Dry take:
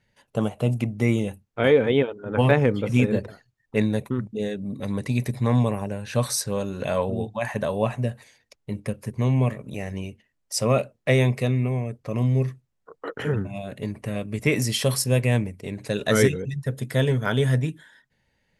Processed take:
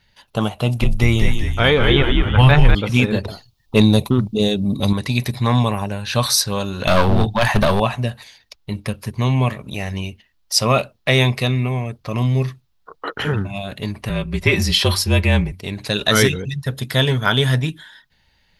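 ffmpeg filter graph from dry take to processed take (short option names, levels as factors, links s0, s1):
-filter_complex "[0:a]asettb=1/sr,asplit=3[s0][s1][s2];[s0]atrim=end=0.564[s3];[s1]atrim=start=0.56:end=2.75,asetpts=PTS-STARTPTS,afade=t=in:d=0.004:c=qsin,afade=t=out:st=2.186:d=0.004:c=qsin,asubboost=boost=10.5:cutoff=110,asplit=7[s4][s5][s6][s7][s8][s9][s10];[s5]adelay=196,afreqshift=-99,volume=0.562[s11];[s6]adelay=392,afreqshift=-198,volume=0.269[s12];[s7]adelay=588,afreqshift=-297,volume=0.129[s13];[s8]adelay=784,afreqshift=-396,volume=0.0624[s14];[s9]adelay=980,afreqshift=-495,volume=0.0299[s15];[s10]adelay=1176,afreqshift=-594,volume=0.0143[s16];[s4][s11][s12][s13][s14][s15][s16]amix=inputs=7:normalize=0,atrim=end_sample=96579[s17];[s2]atrim=start=2.746[s18];[s3][s17]acrossfade=d=0.004:c1=hsin:c2=qsin[s19];[s19][s18]acrossfade=d=0.004:c1=qsin:c2=hsin,asettb=1/sr,asplit=3[s20][s21][s22];[s20]atrim=end=3.254[s23];[s21]atrim=start=3.25:end=4.93,asetpts=PTS-STARTPTS,afade=t=in:d=0.004:c=qsin,afade=t=out:st=1.676:d=0.004:c=qsin,equalizer=f=1700:t=o:w=0.79:g=-15,acontrast=86[s24];[s22]atrim=start=4.926[s25];[s23][s24]acrossfade=d=0.004:c1=hsin:c2=qsin[s26];[s26][s25]acrossfade=d=0.004:c1=qsin:c2=hsin,asettb=1/sr,asplit=3[s27][s28][s29];[s27]atrim=end=6.874[s30];[s28]atrim=start=6.87:end=7.8,asetpts=PTS-STARTPTS,afade=t=in:d=0.004:c=qsin,afade=t=out:st=0.926:d=0.004:c=qsin,lowshelf=f=290:g=7,acontrast=28,aeval=exprs='clip(val(0),-1,0.112)':c=same[s31];[s29]atrim=start=7.796[s32];[s30][s31]acrossfade=d=0.004:c1=hsin:c2=qsin[s33];[s33][s32]acrossfade=d=0.004:c1=qsin:c2=hsin,asettb=1/sr,asplit=3[s34][s35][s36];[s34]atrim=end=14.094[s37];[s35]atrim=start=14.09:end=15.52,asetpts=PTS-STARTPTS,afade=t=in:d=0.004:c=qsin,afade=t=out:st=1.426:d=0.004:c=qsin,highshelf=f=4800:g=-9,aecho=1:1:4.9:0.5,atrim=end_sample=63063,afreqshift=-36[s38];[s36]atrim=start=15.516[s39];[s37][s38]acrossfade=d=0.004:c1=hsin:c2=qsin[s40];[s40][s39]acrossfade=d=0.004:c1=qsin:c2=hsin,equalizer=f=125:t=o:w=1:g=-8,equalizer=f=250:t=o:w=1:g=-7,equalizer=f=500:t=o:w=1:g=-11,equalizer=f=2000:t=o:w=1:g=-6,equalizer=f=4000:t=o:w=1:g=6,equalizer=f=8000:t=o:w=1:g=-10,alimiter=level_in=5.31:limit=0.891:release=50:level=0:latency=1,volume=0.891"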